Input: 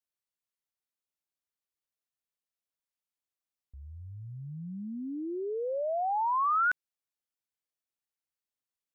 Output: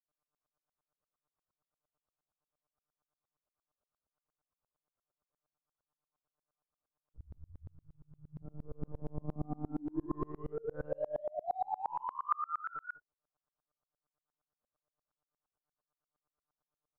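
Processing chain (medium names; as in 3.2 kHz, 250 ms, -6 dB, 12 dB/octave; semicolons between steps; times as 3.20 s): low-pass that closes with the level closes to 400 Hz, closed at -26 dBFS; comb 5 ms, depth 55%; in parallel at -4.5 dB: wavefolder -39 dBFS; on the sum: graphic EQ 125/250/500/1000/2000 Hz -4/+6/+10/+6/-6 dB; compression 16:1, threshold -31 dBFS, peak gain reduction 15 dB; time stretch by phase-locked vocoder 1.9×; resonant high shelf 1.8 kHz -9 dB, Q 3; granulator, pitch spread up and down by 0 st; delay 199 ms -3.5 dB; monotone LPC vocoder at 8 kHz 150 Hz; sawtooth tremolo in dB swelling 8.6 Hz, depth 34 dB; trim +3 dB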